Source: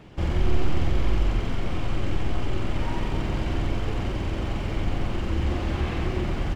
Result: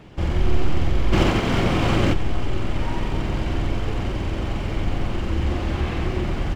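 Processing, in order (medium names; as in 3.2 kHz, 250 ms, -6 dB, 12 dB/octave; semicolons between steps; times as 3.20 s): 1.12–2.12 s: spectral peaks clipped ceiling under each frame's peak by 18 dB; trim +2.5 dB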